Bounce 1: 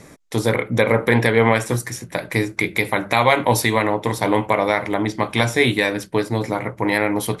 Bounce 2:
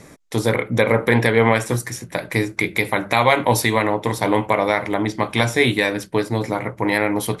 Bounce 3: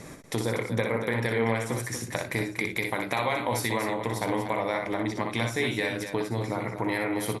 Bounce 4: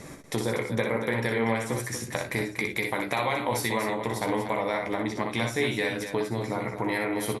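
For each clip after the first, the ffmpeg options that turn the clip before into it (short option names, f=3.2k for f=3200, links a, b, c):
-af anull
-filter_complex "[0:a]acompressor=threshold=-31dB:ratio=2.5,asplit=2[a][b];[b]aecho=0:1:61.22|239.1:0.562|0.355[c];[a][c]amix=inputs=2:normalize=0"
-filter_complex "[0:a]asplit=2[a][b];[b]adelay=14,volume=-9dB[c];[a][c]amix=inputs=2:normalize=0"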